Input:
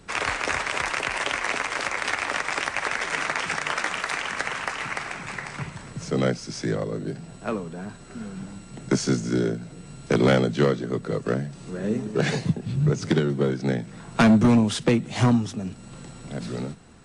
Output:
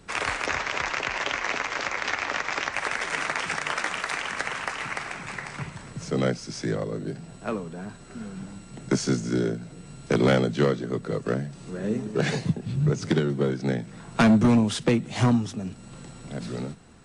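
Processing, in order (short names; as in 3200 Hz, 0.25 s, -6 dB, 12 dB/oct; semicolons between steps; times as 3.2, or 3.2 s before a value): 0.46–2.73 steep low-pass 7100 Hz 48 dB/oct; gain -1.5 dB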